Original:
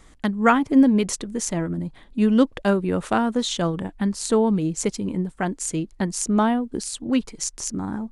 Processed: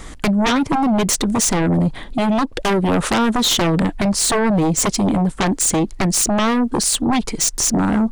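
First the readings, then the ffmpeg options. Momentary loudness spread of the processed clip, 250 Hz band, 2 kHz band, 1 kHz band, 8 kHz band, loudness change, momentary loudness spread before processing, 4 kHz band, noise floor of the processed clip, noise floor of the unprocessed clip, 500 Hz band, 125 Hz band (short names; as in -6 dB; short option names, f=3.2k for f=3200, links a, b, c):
3 LU, +3.5 dB, +6.5 dB, +5.5 dB, +11.0 dB, +5.5 dB, 10 LU, +11.5 dB, -35 dBFS, -50 dBFS, +3.0 dB, +7.5 dB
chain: -af "acompressor=threshold=-23dB:ratio=5,aeval=exprs='0.376*sin(PI/2*7.08*val(0)/0.376)':c=same,volume=-4.5dB"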